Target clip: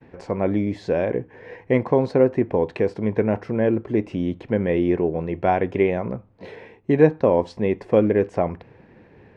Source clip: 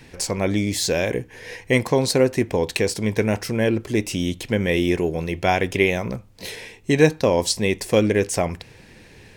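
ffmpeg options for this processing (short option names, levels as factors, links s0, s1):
-af "lowpass=1200,agate=range=0.0224:threshold=0.00447:ratio=3:detection=peak,highpass=f=140:p=1,volume=1.19"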